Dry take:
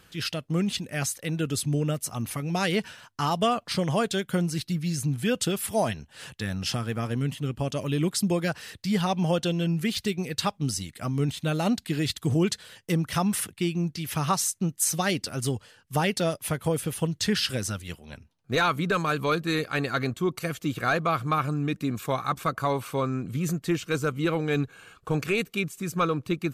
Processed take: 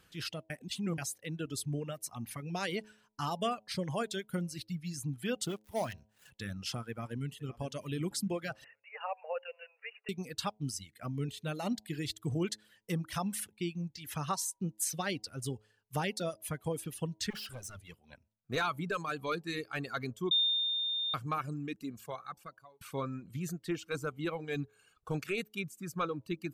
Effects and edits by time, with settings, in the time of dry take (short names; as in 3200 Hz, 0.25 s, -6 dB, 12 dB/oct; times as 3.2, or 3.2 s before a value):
0.5–0.98 reverse
5.46–6.31 switching dead time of 0.11 ms
6.88–7.63 echo throw 0.51 s, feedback 55%, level -13.5 dB
8.64–10.09 brick-wall FIR band-pass 450–2900 Hz
17.3–17.98 hard clip -30.5 dBFS
19.01–19.65 LPF 12000 Hz
20.31–21.14 bleep 3630 Hz -15 dBFS
21.69–22.81 fade out
whole clip: de-hum 106.8 Hz, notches 9; reverb removal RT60 1.9 s; gain -8.5 dB